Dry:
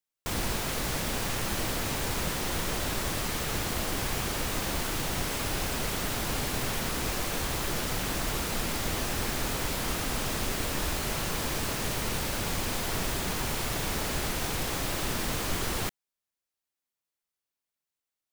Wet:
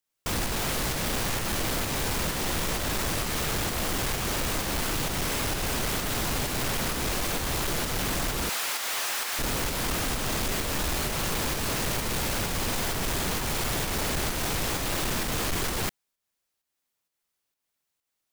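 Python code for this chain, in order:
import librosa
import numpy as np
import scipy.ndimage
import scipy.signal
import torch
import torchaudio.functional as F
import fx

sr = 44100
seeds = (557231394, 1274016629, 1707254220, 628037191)

p1 = fx.volume_shaper(x, sr, bpm=130, per_beat=1, depth_db=-16, release_ms=201.0, shape='fast start')
p2 = x + (p1 * 10.0 ** (3.0 / 20.0))
p3 = fx.highpass(p2, sr, hz=900.0, slope=12, at=(8.49, 9.39))
y = 10.0 ** (-24.5 / 20.0) * np.tanh(p3 / 10.0 ** (-24.5 / 20.0))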